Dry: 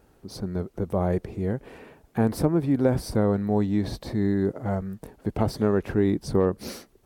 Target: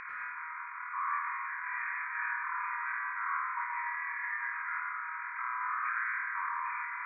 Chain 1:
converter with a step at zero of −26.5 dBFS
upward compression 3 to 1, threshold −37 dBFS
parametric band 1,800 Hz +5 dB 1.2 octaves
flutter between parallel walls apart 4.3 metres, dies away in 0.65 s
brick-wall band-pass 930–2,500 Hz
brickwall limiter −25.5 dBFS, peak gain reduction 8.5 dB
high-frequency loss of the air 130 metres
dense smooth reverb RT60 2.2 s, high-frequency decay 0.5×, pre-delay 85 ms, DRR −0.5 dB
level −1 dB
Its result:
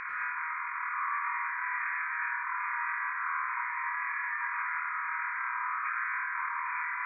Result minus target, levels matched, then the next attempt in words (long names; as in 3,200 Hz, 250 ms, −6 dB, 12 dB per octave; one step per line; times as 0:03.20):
converter with a step at zero: distortion +8 dB
converter with a step at zero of −35.5 dBFS
upward compression 3 to 1, threshold −37 dBFS
parametric band 1,800 Hz +5 dB 1.2 octaves
flutter between parallel walls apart 4.3 metres, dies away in 0.65 s
brick-wall band-pass 930–2,500 Hz
brickwall limiter −25.5 dBFS, peak gain reduction 6.5 dB
high-frequency loss of the air 130 metres
dense smooth reverb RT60 2.2 s, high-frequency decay 0.5×, pre-delay 85 ms, DRR −0.5 dB
level −1 dB